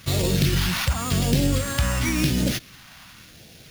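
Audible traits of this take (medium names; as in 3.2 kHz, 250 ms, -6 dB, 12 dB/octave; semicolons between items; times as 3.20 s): aliases and images of a low sample rate 8 kHz, jitter 0%; phasing stages 2, 0.93 Hz, lowest notch 440–1100 Hz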